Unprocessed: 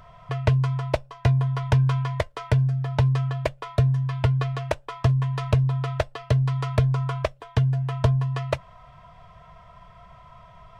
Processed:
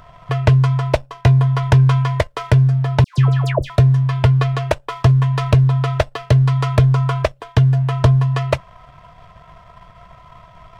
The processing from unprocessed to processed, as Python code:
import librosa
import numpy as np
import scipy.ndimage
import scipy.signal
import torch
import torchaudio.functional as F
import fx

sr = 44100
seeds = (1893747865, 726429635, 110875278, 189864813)

y = fx.leveller(x, sr, passes=1)
y = fx.dispersion(y, sr, late='lows', ms=141.0, hz=1400.0, at=(3.04, 3.7))
y = y * 10.0 ** (5.0 / 20.0)